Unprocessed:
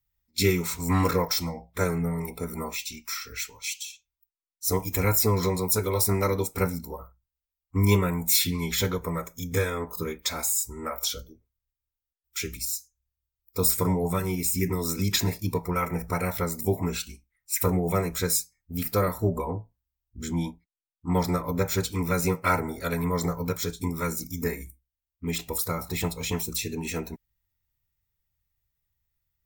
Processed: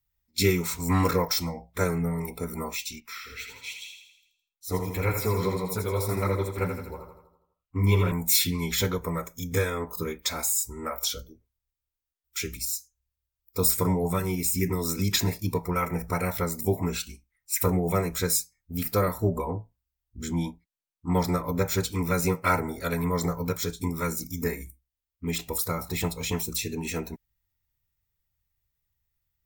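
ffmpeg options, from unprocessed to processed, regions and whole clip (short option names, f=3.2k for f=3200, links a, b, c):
-filter_complex "[0:a]asettb=1/sr,asplit=3[a][b][c];[a]atrim=end=3.004[d];[b]atrim=start=3:end=8.12,asetpts=PTS-STARTPTS,afade=t=in:d=0.004:c=qsin,afade=t=out:st=5.116:d=0.004:c=qsin,highshelf=f=4.4k:t=q:w=1.5:g=-7,flanger=delay=6.5:depth=6.8:regen=-28:speed=1.9:shape=triangular,aecho=1:1:82|164|246|328|410|492|574:0.473|0.251|0.133|0.0704|0.0373|0.0198|0.0105,atrim=end_sample=225792[e];[c]atrim=start=8.116[f];[d][e]acrossfade=d=0.004:c1=hsin:c2=qsin[g];[g][f]acrossfade=d=0.004:c1=qsin:c2=hsin"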